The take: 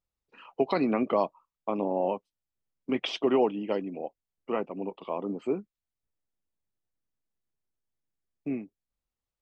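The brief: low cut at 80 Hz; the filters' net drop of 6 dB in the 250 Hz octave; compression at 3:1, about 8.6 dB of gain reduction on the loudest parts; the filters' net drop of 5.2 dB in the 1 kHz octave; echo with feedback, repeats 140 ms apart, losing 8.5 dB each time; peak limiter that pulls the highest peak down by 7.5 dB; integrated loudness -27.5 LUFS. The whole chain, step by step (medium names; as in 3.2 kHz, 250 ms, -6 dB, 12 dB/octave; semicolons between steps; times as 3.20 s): high-pass 80 Hz; peaking EQ 250 Hz -7 dB; peaking EQ 1 kHz -6.5 dB; compression 3:1, threshold -35 dBFS; peak limiter -30 dBFS; feedback delay 140 ms, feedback 38%, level -8.5 dB; trim +14.5 dB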